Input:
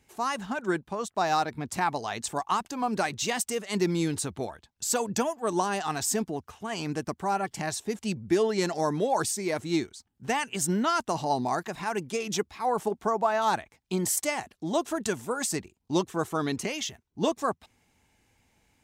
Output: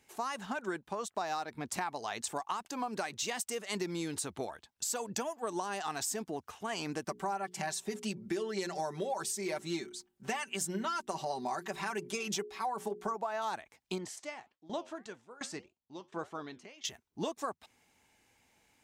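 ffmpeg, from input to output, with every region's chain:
ffmpeg -i in.wav -filter_complex "[0:a]asettb=1/sr,asplit=3[link_01][link_02][link_03];[link_01]atrim=end=7.054[link_04];[link_02]atrim=start=7.05:end=13.16,asetpts=PTS-STARTPTS,afade=type=in:duration=0.004:curve=qsin,afade=type=out:start_time=6.106:duration=0.004:curve=qsin,bandreject=frequency=60:width_type=h:width=6,bandreject=frequency=120:width_type=h:width=6,bandreject=frequency=180:width_type=h:width=6,bandreject=frequency=240:width_type=h:width=6,bandreject=frequency=300:width_type=h:width=6,bandreject=frequency=360:width_type=h:width=6,bandreject=frequency=420:width_type=h:width=6,aecho=1:1:5.2:0.7,atrim=end_sample=269451[link_05];[link_03]atrim=start=13.156[link_06];[link_04][link_05]acrossfade=duration=0.004:curve1=hsin:curve2=qsin[link_07];[link_07][link_06]acrossfade=duration=0.004:curve1=qsin:curve2=hsin,asettb=1/sr,asplit=3[link_08][link_09][link_10];[link_08]atrim=end=13.984[link_11];[link_09]atrim=start=13.98:end=16.85,asetpts=PTS-STARTPTS,afade=type=in:duration=0.004:curve=qsin,afade=type=out:start_time=2.866:duration=0.004:curve=qsin,lowpass=4700,flanger=delay=4.7:depth=5.8:regen=-82:speed=1.7:shape=triangular,aeval=exprs='val(0)*pow(10,-18*if(lt(mod(1.4*n/s,1),2*abs(1.4)/1000),1-mod(1.4*n/s,1)/(2*abs(1.4)/1000),(mod(1.4*n/s,1)-2*abs(1.4)/1000)/(1-2*abs(1.4)/1000))/20)':channel_layout=same[link_12];[link_10]atrim=start=16.846[link_13];[link_11][link_12]acrossfade=duration=0.004:curve1=hsin:curve2=qsin[link_14];[link_14][link_13]acrossfade=duration=0.004:curve1=qsin:curve2=hsin,lowshelf=frequency=190:gain=-12,acompressor=threshold=-33dB:ratio=6" out.wav

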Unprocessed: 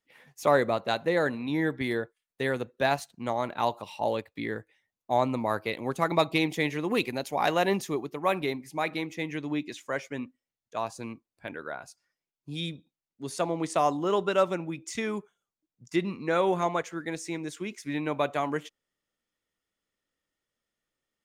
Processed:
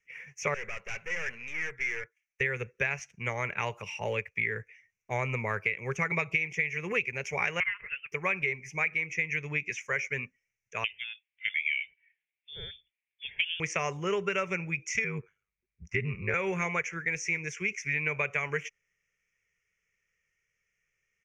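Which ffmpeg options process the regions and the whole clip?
ffmpeg -i in.wav -filter_complex "[0:a]asettb=1/sr,asplit=3[link_01][link_02][link_03];[link_01]atrim=end=0.544[link_04];[link_02]atrim=start=0.54:end=2.41,asetpts=PTS-STARTPTS,afade=type=in:duration=0.004:curve=qsin,afade=type=out:start_time=1.866:duration=0.004:curve=qsin,lowshelf=frequency=490:gain=-10,aeval=exprs='(tanh(70.8*val(0)+0.75)-tanh(0.75))/70.8':channel_layout=same[link_05];[link_03]atrim=start=2.406[link_06];[link_04][link_05]acrossfade=duration=0.004:curve1=hsin:curve2=qsin[link_07];[link_07][link_06]acrossfade=duration=0.004:curve1=qsin:curve2=hsin,asettb=1/sr,asplit=3[link_08][link_09][link_10];[link_08]atrim=end=7.604[link_11];[link_09]atrim=start=7.6:end=8.12,asetpts=PTS-STARTPTS,afade=type=in:duration=0.004:curve=qsin,afade=type=out:start_time=0.516:duration=0.004:curve=qsin,highpass=frequency=1200:width=0.5412,highpass=frequency=1200:width=1.3066,lowpass=frequency=3200:width_type=q:width=0.5098,lowpass=frequency=3200:width_type=q:width=0.6013,lowpass=frequency=3200:width_type=q:width=0.9,lowpass=frequency=3200:width_type=q:width=2.563,afreqshift=-3800[link_12];[link_10]atrim=start=8.116[link_13];[link_11][link_12]acrossfade=duration=0.004:curve1=hsin:curve2=qsin[link_14];[link_14][link_13]acrossfade=duration=0.004:curve1=qsin:curve2=hsin,asettb=1/sr,asplit=3[link_15][link_16][link_17];[link_15]atrim=end=10.844[link_18];[link_16]atrim=start=10.84:end=13.6,asetpts=PTS-STARTPTS,afade=type=in:duration=0.004:curve=qsin,afade=type=out:start_time=2.756:duration=0.004:curve=qsin,lowpass=frequency=3100:width_type=q:width=0.5098,lowpass=frequency=3100:width_type=q:width=0.6013,lowpass=frequency=3100:width_type=q:width=0.9,lowpass=frequency=3100:width_type=q:width=2.563,afreqshift=-3700,asuperstop=centerf=1200:order=4:qfactor=1.5[link_19];[link_17]atrim=start=13.596[link_20];[link_18][link_19]acrossfade=duration=0.004:curve1=hsin:curve2=qsin[link_21];[link_21][link_20]acrossfade=duration=0.004:curve1=qsin:curve2=hsin,asettb=1/sr,asplit=3[link_22][link_23][link_24];[link_22]atrim=end=15.044[link_25];[link_23]atrim=start=15.04:end=16.34,asetpts=PTS-STARTPTS,afade=type=in:duration=0.004:curve=qsin,afade=type=out:start_time=1.296:duration=0.004:curve=qsin,bass=frequency=250:gain=6,treble=frequency=4000:gain=-14,aeval=exprs='val(0)*sin(2*PI*50*n/s)':channel_layout=same[link_26];[link_24]atrim=start=16.336[link_27];[link_25][link_26]acrossfade=duration=0.004:curve1=hsin:curve2=qsin[link_28];[link_28][link_27]acrossfade=duration=0.004:curve1=qsin:curve2=hsin,acrossover=split=7200[link_29][link_30];[link_30]acompressor=threshold=-60dB:ratio=4:attack=1:release=60[link_31];[link_29][link_31]amix=inputs=2:normalize=0,firequalizer=gain_entry='entry(120,0);entry(190,-5);entry(280,-25);entry(410,-3);entry(690,-16);entry(2300,13);entry(4000,-26);entry(5800,6);entry(8300,-12);entry(12000,-15)':delay=0.05:min_phase=1,acompressor=threshold=-31dB:ratio=10,volume=5.5dB" out.wav

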